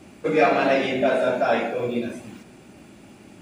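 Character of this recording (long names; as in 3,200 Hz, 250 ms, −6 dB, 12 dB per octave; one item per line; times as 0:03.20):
background noise floor −48 dBFS
spectral slope −3.5 dB per octave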